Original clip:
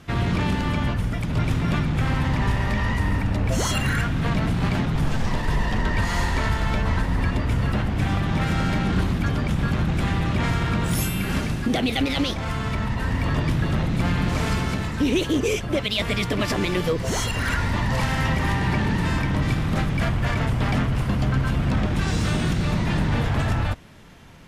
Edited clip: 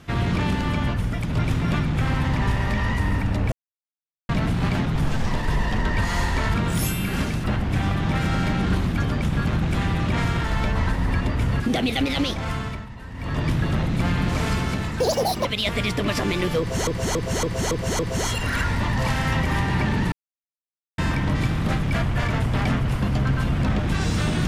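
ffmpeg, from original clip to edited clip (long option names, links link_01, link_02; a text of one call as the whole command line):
ffmpeg -i in.wav -filter_complex "[0:a]asplit=17[link_01][link_02][link_03][link_04][link_05][link_06][link_07][link_08][link_09][link_10][link_11][link_12][link_13][link_14][link_15][link_16][link_17];[link_01]atrim=end=3.52,asetpts=PTS-STARTPTS,afade=type=out:start_time=3.516:duration=0.004:curve=hsin[link_18];[link_02]atrim=start=3.52:end=4.29,asetpts=PTS-STARTPTS,volume=0[link_19];[link_03]atrim=start=4.29:end=6.542,asetpts=PTS-STARTPTS,afade=type=in:duration=0.004:curve=hsin[link_20];[link_04]atrim=start=10.698:end=11.602[link_21];[link_05]atrim=start=7.698:end=10.702[link_22];[link_06]atrim=start=6.538:end=7.702[link_23];[link_07]atrim=start=11.598:end=12.86,asetpts=PTS-STARTPTS,afade=type=out:start_time=0.942:duration=0.32:silence=0.223872[link_24];[link_08]atrim=start=12.86:end=13.14,asetpts=PTS-STARTPTS,volume=-13dB[link_25];[link_09]atrim=start=13.14:end=15.004,asetpts=PTS-STARTPTS,afade=type=in:duration=0.32:silence=0.223872[link_26];[link_10]atrim=start=15:end=15.78,asetpts=PTS-STARTPTS,asetrate=76293,aresample=44100,atrim=end_sample=19883,asetpts=PTS-STARTPTS[link_27];[link_11]atrim=start=15.776:end=17.202[link_28];[link_12]atrim=start=16.918:end=17.202[link_29];[link_13]atrim=start=16.918:end=17.202[link_30];[link_14]atrim=start=16.918:end=17.202[link_31];[link_15]atrim=start=16.918:end=17.202[link_32];[link_16]atrim=start=16.918:end=19.05,asetpts=PTS-STARTPTS,afade=type=out:start_time=2.128:duration=0.004:curve=hsin,apad=pad_dur=0.86[link_33];[link_17]atrim=start=19.05,asetpts=PTS-STARTPTS,afade=type=in:duration=0.004:curve=hsin[link_34];[link_18][link_19][link_20]concat=n=3:v=0:a=1[link_35];[link_35][link_21]acrossfade=duration=0.004:curve1=hsin:curve2=hsin[link_36];[link_36][link_22]acrossfade=duration=0.004:curve1=hsin:curve2=hsin[link_37];[link_37][link_23]acrossfade=duration=0.004:curve1=hsin:curve2=hsin[link_38];[link_24][link_25][link_26]concat=n=3:v=0:a=1[link_39];[link_38][link_39]acrossfade=duration=0.004:curve1=hsin:curve2=hsin[link_40];[link_40][link_27]acrossfade=duration=0.004:curve1=hsin:curve2=hsin[link_41];[link_41][link_28]acrossfade=duration=0.004:curve1=hsin:curve2=hsin[link_42];[link_42][link_29]acrossfade=duration=0.004:curve1=hsin:curve2=hsin[link_43];[link_43][link_30]acrossfade=duration=0.004:curve1=hsin:curve2=hsin[link_44];[link_44][link_31]acrossfade=duration=0.004:curve1=hsin:curve2=hsin[link_45];[link_45][link_32]acrossfade=duration=0.004:curve1=hsin:curve2=hsin[link_46];[link_33][link_34]concat=n=2:v=0:a=1[link_47];[link_46][link_47]acrossfade=duration=0.004:curve1=hsin:curve2=hsin" out.wav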